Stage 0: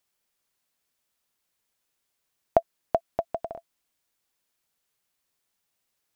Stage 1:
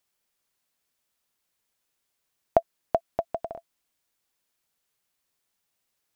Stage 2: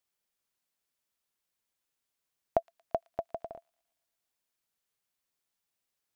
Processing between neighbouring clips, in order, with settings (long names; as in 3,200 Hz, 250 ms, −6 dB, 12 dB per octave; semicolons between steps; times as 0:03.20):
no processing that can be heard
delay with a high-pass on its return 115 ms, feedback 59%, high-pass 2,800 Hz, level −15 dB; level −7 dB